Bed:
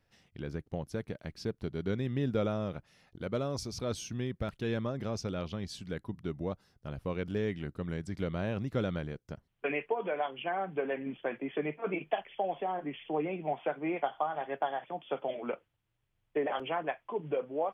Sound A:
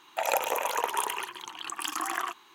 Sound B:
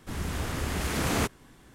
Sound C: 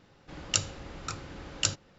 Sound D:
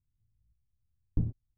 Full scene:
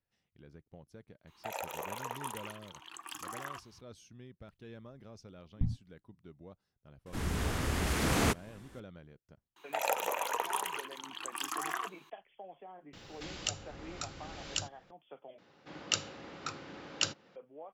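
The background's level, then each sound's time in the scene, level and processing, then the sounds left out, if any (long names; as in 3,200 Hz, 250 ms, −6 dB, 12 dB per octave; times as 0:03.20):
bed −16.5 dB
0:01.27: mix in A −11.5 dB + brickwall limiter −12.5 dBFS
0:04.44: mix in D −2.5 dB + brick-wall band-stop 280–670 Hz
0:07.06: mix in B −1.5 dB + parametric band 14,000 Hz −2 dB
0:09.56: mix in A −5 dB
0:12.93: mix in C −7 dB + multiband upward and downward compressor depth 70%
0:15.38: overwrite with C −1.5 dB + band-pass filter 190–5,600 Hz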